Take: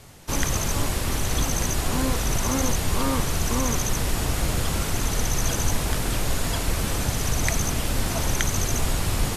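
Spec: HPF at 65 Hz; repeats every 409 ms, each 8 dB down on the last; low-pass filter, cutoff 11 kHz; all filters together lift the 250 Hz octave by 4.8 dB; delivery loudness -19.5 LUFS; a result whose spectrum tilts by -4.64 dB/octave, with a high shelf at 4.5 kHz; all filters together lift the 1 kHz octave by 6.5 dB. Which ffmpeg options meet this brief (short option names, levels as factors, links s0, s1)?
-af "highpass=65,lowpass=11000,equalizer=f=250:t=o:g=5.5,equalizer=f=1000:t=o:g=8,highshelf=f=4500:g=-6,aecho=1:1:409|818|1227|1636|2045:0.398|0.159|0.0637|0.0255|0.0102,volume=1.68"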